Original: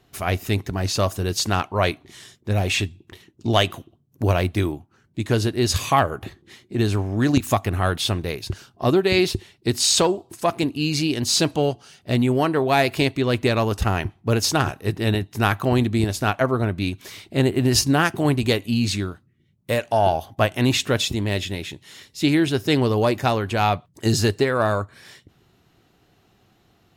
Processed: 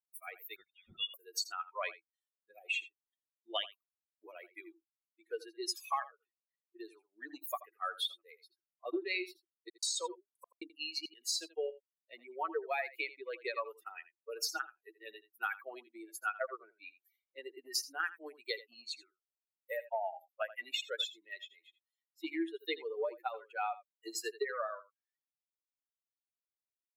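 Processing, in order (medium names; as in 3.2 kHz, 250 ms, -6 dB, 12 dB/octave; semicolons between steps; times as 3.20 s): expander on every frequency bin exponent 3; tilt shelf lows -5.5 dB, about 1.2 kHz; compression 12:1, threshold -30 dBFS, peak gain reduction 17.5 dB; rippled Chebyshev high-pass 320 Hz, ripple 3 dB; 9.68–11.12 s: trance gate ".x..xxxxx" 171 bpm -60 dB; delay 82 ms -16.5 dB; 0.56–1.14 s: frequency inversion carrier 4 kHz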